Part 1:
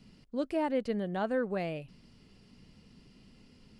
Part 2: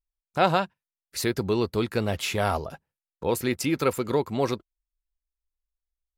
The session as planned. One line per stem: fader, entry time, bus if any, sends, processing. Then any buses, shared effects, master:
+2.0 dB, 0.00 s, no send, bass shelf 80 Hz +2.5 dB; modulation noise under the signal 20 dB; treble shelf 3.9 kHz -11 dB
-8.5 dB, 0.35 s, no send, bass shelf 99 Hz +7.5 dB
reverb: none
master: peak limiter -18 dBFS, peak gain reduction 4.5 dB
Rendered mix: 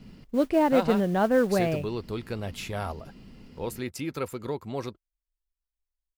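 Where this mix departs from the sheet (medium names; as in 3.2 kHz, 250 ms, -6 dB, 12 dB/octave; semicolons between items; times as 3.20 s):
stem 1 +2.0 dB -> +9.0 dB; master: missing peak limiter -18 dBFS, peak gain reduction 4.5 dB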